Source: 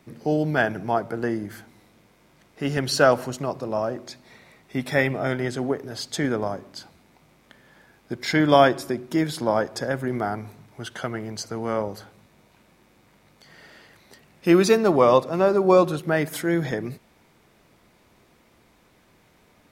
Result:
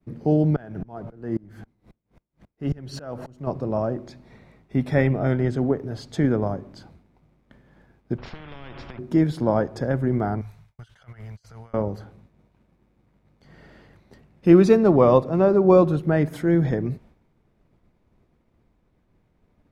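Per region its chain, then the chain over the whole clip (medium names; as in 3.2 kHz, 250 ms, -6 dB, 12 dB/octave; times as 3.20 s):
0.56–3.47 s: companding laws mixed up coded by mu + sawtooth tremolo in dB swelling 3.7 Hz, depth 29 dB
8.18–8.99 s: low-pass 2.5 kHz 24 dB/octave + compression 12:1, threshold -29 dBFS + spectrum-flattening compressor 10:1
10.41–11.74 s: gate with hold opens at -40 dBFS, closes at -42 dBFS + amplifier tone stack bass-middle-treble 10-0-10 + compressor with a negative ratio -49 dBFS
whole clip: expander -50 dBFS; tilt EQ -3.5 dB/octave; trim -2.5 dB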